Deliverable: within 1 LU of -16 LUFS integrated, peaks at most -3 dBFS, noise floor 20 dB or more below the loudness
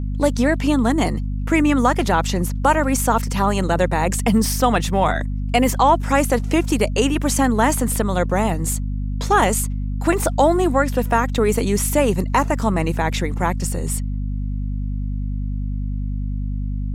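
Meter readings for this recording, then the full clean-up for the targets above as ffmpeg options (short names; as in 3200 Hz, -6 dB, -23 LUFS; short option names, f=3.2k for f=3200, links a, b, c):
hum 50 Hz; harmonics up to 250 Hz; hum level -21 dBFS; loudness -20.0 LUFS; peak -3.0 dBFS; loudness target -16.0 LUFS
-> -af "bandreject=f=50:t=h:w=6,bandreject=f=100:t=h:w=6,bandreject=f=150:t=h:w=6,bandreject=f=200:t=h:w=6,bandreject=f=250:t=h:w=6"
-af "volume=4dB,alimiter=limit=-3dB:level=0:latency=1"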